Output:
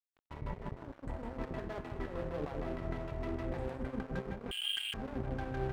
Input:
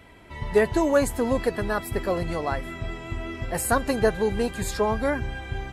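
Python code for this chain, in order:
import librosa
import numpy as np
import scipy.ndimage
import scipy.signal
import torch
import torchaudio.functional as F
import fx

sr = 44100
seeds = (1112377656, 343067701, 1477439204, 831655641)

p1 = fx.filter_lfo_lowpass(x, sr, shape='saw_down', hz=6.5, low_hz=280.0, high_hz=1500.0, q=0.97)
p2 = fx.over_compress(p1, sr, threshold_db=-32.0, ratio=-1.0)
p3 = fx.comb_fb(p2, sr, f0_hz=130.0, decay_s=0.99, harmonics='all', damping=0.0, mix_pct=80)
p4 = p3 + fx.echo_single(p3, sr, ms=157, db=-5.0, dry=0)
p5 = fx.freq_invert(p4, sr, carrier_hz=3200, at=(4.51, 4.94))
p6 = np.sign(p5) * np.maximum(np.abs(p5) - 10.0 ** (-48.5 / 20.0), 0.0)
y = p6 * 10.0 ** (6.0 / 20.0)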